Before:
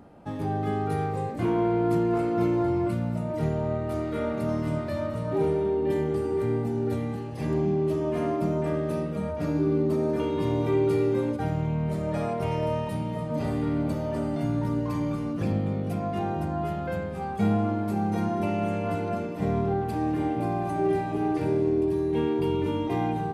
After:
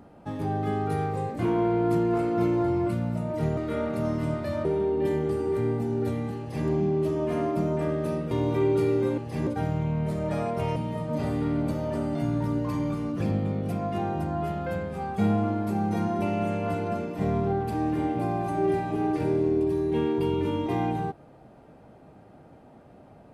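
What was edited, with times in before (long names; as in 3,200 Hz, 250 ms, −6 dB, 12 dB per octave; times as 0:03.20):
0:03.57–0:04.01: remove
0:05.09–0:05.50: remove
0:07.24–0:07.53: duplicate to 0:11.30
0:09.16–0:10.43: remove
0:12.59–0:12.97: remove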